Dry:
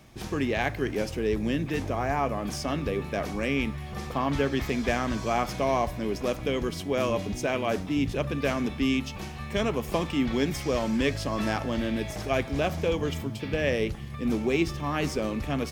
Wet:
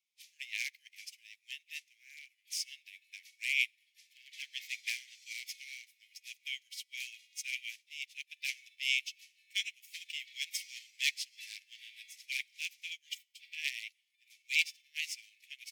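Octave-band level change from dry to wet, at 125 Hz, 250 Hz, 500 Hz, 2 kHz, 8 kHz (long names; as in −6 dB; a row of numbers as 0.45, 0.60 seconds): below −40 dB, below −40 dB, below −40 dB, −3.5 dB, −1.5 dB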